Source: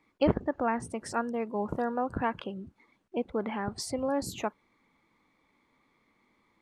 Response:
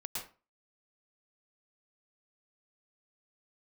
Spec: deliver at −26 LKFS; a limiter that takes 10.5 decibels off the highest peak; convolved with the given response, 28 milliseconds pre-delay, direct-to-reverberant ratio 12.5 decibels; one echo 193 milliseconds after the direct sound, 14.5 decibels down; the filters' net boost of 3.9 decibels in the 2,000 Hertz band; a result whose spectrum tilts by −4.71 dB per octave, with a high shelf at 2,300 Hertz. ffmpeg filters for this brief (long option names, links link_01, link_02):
-filter_complex "[0:a]equalizer=frequency=2000:width_type=o:gain=7.5,highshelf=frequency=2300:gain=-5,alimiter=limit=-20.5dB:level=0:latency=1,aecho=1:1:193:0.188,asplit=2[link_01][link_02];[1:a]atrim=start_sample=2205,adelay=28[link_03];[link_02][link_03]afir=irnorm=-1:irlink=0,volume=-13dB[link_04];[link_01][link_04]amix=inputs=2:normalize=0,volume=7.5dB"